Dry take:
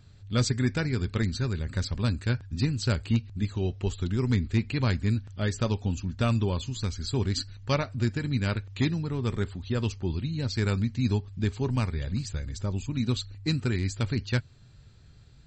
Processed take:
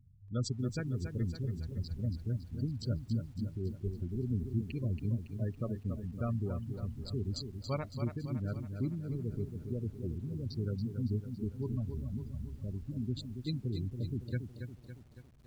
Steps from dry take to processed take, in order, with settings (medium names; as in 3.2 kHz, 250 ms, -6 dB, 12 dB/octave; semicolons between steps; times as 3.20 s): local Wiener filter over 41 samples; spectral gate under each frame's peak -20 dB strong; bit-crushed delay 279 ms, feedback 55%, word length 9-bit, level -7.5 dB; trim -8.5 dB